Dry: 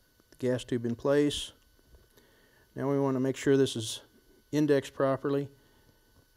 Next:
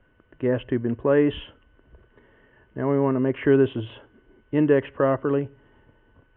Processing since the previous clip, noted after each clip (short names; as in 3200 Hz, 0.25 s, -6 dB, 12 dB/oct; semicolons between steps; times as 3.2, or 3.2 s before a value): steep low-pass 2900 Hz 72 dB/oct; gain +6.5 dB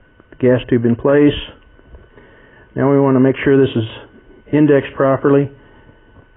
maximiser +13.5 dB; gain -1.5 dB; AAC 16 kbps 16000 Hz